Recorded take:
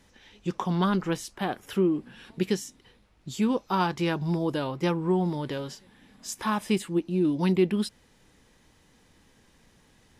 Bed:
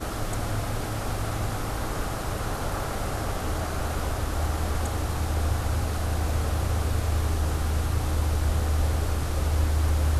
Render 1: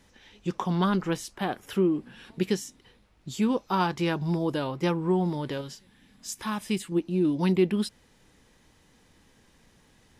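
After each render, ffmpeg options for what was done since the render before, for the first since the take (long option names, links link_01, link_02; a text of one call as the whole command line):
ffmpeg -i in.wav -filter_complex "[0:a]asettb=1/sr,asplit=3[link_01][link_02][link_03];[link_01]atrim=end=5.614[link_04];[link_02]atrim=start=5.61:end=6.92,asetpts=PTS-STARTPTS,afade=type=in:duration=0.004:curve=qsin,afade=type=out:start_time=1.306:duration=0.004:curve=qsin,equalizer=frequency=660:width=0.44:gain=-6.5[link_05];[link_03]atrim=start=6.916[link_06];[link_04][link_05]acrossfade=duration=0.004:curve1=hsin:curve2=qsin[link_07];[link_07][link_06]acrossfade=duration=0.004:curve1=qsin:curve2=hsin" out.wav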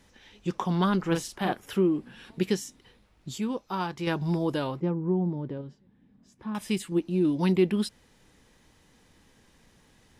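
ffmpeg -i in.wav -filter_complex "[0:a]asettb=1/sr,asplit=3[link_01][link_02][link_03];[link_01]atrim=end=1.074[link_04];[link_02]atrim=start=1.07:end=1.53,asetpts=PTS-STARTPTS,afade=type=in:duration=0.004:curve=qsin,afade=type=out:start_time=0.456:duration=0.004:curve=qsin,asplit=2[link_05][link_06];[link_06]adelay=42,volume=-4dB[link_07];[link_05][link_07]amix=inputs=2:normalize=0,atrim=end_sample=20286[link_08];[link_03]atrim=start=1.526[link_09];[link_04][link_08]acrossfade=duration=0.004:curve1=hsin:curve2=qsin[link_10];[link_10][link_09]acrossfade=duration=0.004:curve1=qsin:curve2=hsin,asettb=1/sr,asplit=3[link_11][link_12][link_13];[link_11]atrim=end=4.804[link_14];[link_12]atrim=start=4.8:end=6.55,asetpts=PTS-STARTPTS,afade=type=in:duration=0.004:curve=qsin,afade=type=out:start_time=1.746:duration=0.004:curve=qsin,bandpass=frequency=170:width_type=q:width=0.56[link_15];[link_13]atrim=start=6.546[link_16];[link_14][link_15]acrossfade=duration=0.004:curve1=hsin:curve2=qsin[link_17];[link_17][link_16]acrossfade=duration=0.004:curve1=qsin:curve2=hsin,asplit=3[link_18][link_19][link_20];[link_18]atrim=end=3.382[link_21];[link_19]atrim=start=3.378:end=4.072,asetpts=PTS-STARTPTS,volume=-5.5dB[link_22];[link_20]atrim=start=4.068[link_23];[link_21][link_22]acrossfade=duration=0.004:curve1=hsin:curve2=hsin[link_24];[link_24][link_23]acrossfade=duration=0.004:curve1=hsin:curve2=hsin" out.wav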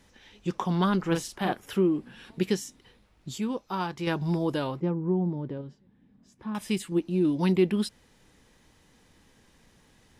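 ffmpeg -i in.wav -af anull out.wav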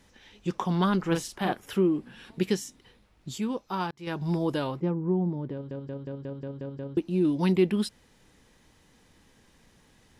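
ffmpeg -i in.wav -filter_complex "[0:a]asplit=10[link_01][link_02][link_03][link_04][link_05][link_06][link_07][link_08][link_09][link_10];[link_01]atrim=end=3.91,asetpts=PTS-STARTPTS,afade=type=out:start_time=3.906:duration=0.004:curve=hsin[link_11];[link_02]atrim=start=3.91:end=5.712,asetpts=PTS-STARTPTS,afade=type=in:duration=0.52:curve=qsin[link_12];[link_03]atrim=start=5.528:end=5.712[link_13];[link_04]atrim=start=5.528:end=5.712[link_14];[link_05]atrim=start=5.528:end=5.712[link_15];[link_06]atrim=start=5.528:end=5.712[link_16];[link_07]atrim=start=5.528:end=5.712[link_17];[link_08]atrim=start=5.528:end=5.712[link_18];[link_09]atrim=start=5.528:end=5.712[link_19];[link_10]atrim=start=6.968[link_20];[link_11][link_12]concat=n=2:v=0:a=1[link_21];[link_21][link_13]acrossfade=duration=0.004:curve1=hsin:curve2=hsin[link_22];[link_22][link_14]acrossfade=duration=0.004:curve1=hsin:curve2=hsin[link_23];[link_23][link_15]acrossfade=duration=0.004:curve1=hsin:curve2=hsin[link_24];[link_24][link_16]acrossfade=duration=0.004:curve1=hsin:curve2=hsin[link_25];[link_25][link_17]acrossfade=duration=0.004:curve1=hsin:curve2=hsin[link_26];[link_26][link_18]acrossfade=duration=0.004:curve1=hsin:curve2=hsin[link_27];[link_27][link_19]acrossfade=duration=0.004:curve1=hsin:curve2=hsin[link_28];[link_28][link_20]acrossfade=duration=0.004:curve1=hsin:curve2=hsin" out.wav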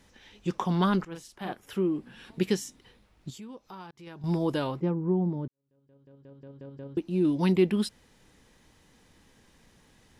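ffmpeg -i in.wav -filter_complex "[0:a]asettb=1/sr,asplit=3[link_01][link_02][link_03];[link_01]atrim=end=3.304[link_04];[link_02]atrim=start=3.3:end=4.24,asetpts=PTS-STARTPTS,afade=type=in:duration=0.004:curve=qsin,afade=type=out:start_time=0.936:duration=0.004:curve=qsin,acompressor=threshold=-47dB:ratio=2.5:attack=3.2:release=140:knee=1:detection=peak[link_05];[link_03]atrim=start=4.236[link_06];[link_04][link_05]acrossfade=duration=0.004:curve1=hsin:curve2=qsin[link_07];[link_07][link_06]acrossfade=duration=0.004:curve1=qsin:curve2=hsin,asplit=3[link_08][link_09][link_10];[link_08]atrim=end=1.05,asetpts=PTS-STARTPTS,afade=type=out:start_time=1.046:duration=0.004:curve=hsin:silence=0.133352[link_11];[link_09]atrim=start=1.05:end=5.48,asetpts=PTS-STARTPTS,afade=type=in:duration=1.3:silence=0.133352,afade=type=out:start_time=4.426:duration=0.004:curve=hsin[link_12];[link_10]atrim=start=5.48,asetpts=PTS-STARTPTS,afade=type=in:duration=1.8:curve=qua[link_13];[link_11][link_12][link_13]concat=n=3:v=0:a=1" out.wav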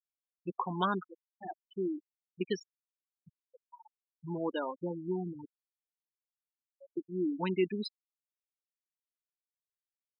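ffmpeg -i in.wav -af "highpass=frequency=660:poles=1,afftfilt=real='re*gte(hypot(re,im),0.0447)':imag='im*gte(hypot(re,im),0.0447)':win_size=1024:overlap=0.75" out.wav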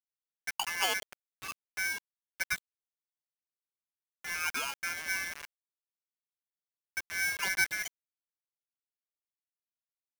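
ffmpeg -i in.wav -af "acrusher=bits=6:mix=0:aa=0.000001,aeval=exprs='val(0)*sgn(sin(2*PI*1900*n/s))':channel_layout=same" out.wav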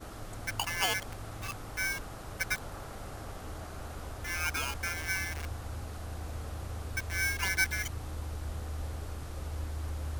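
ffmpeg -i in.wav -i bed.wav -filter_complex "[1:a]volume=-13.5dB[link_01];[0:a][link_01]amix=inputs=2:normalize=0" out.wav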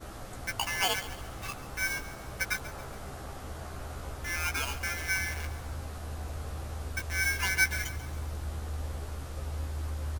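ffmpeg -i in.wav -filter_complex "[0:a]asplit=2[link_01][link_02];[link_02]adelay=15,volume=-5dB[link_03];[link_01][link_03]amix=inputs=2:normalize=0,aecho=1:1:138|276|414|552:0.178|0.0818|0.0376|0.0173" out.wav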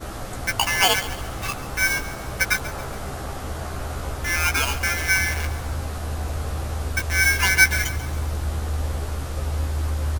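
ffmpeg -i in.wav -af "volume=10.5dB" out.wav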